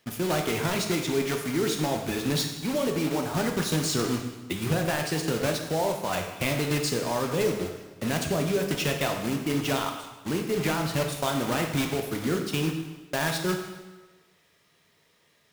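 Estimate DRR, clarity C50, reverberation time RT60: 3.0 dB, 5.5 dB, 1.2 s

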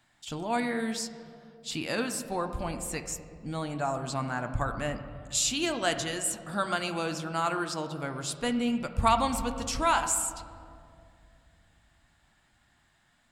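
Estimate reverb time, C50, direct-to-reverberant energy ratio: 2.4 s, 9.5 dB, 6.5 dB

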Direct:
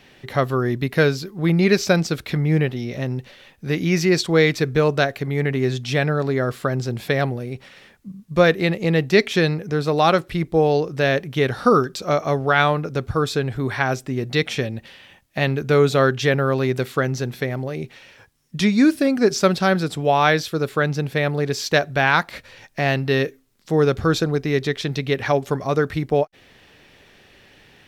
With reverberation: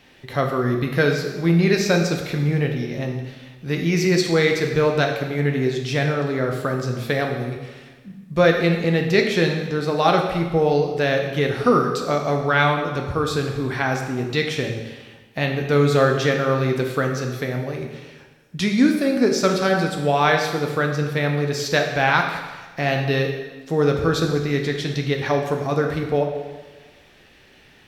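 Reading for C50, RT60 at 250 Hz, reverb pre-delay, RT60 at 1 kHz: 5.0 dB, 1.4 s, 3 ms, 1.3 s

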